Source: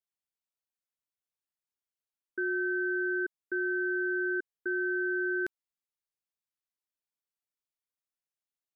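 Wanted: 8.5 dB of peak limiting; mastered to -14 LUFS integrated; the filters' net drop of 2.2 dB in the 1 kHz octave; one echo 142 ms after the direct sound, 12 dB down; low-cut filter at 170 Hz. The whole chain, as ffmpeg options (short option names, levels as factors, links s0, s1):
-af "highpass=170,equalizer=f=1000:t=o:g=-4.5,alimiter=level_in=3.16:limit=0.0631:level=0:latency=1,volume=0.316,aecho=1:1:142:0.251,volume=25.1"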